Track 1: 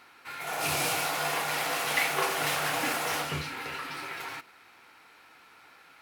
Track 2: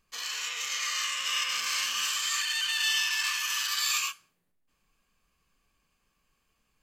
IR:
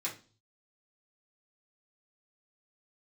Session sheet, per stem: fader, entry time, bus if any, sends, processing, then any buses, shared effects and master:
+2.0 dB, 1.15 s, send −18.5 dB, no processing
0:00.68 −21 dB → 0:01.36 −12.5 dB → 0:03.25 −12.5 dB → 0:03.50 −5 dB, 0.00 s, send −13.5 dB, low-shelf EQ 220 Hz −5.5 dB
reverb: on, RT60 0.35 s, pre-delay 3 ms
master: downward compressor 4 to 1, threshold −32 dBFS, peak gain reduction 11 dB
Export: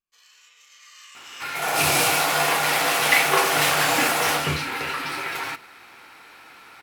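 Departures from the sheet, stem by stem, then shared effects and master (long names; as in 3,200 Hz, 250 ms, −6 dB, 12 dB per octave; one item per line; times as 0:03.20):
stem 1 +2.0 dB → +8.5 dB
master: missing downward compressor 4 to 1, threshold −32 dBFS, peak gain reduction 11 dB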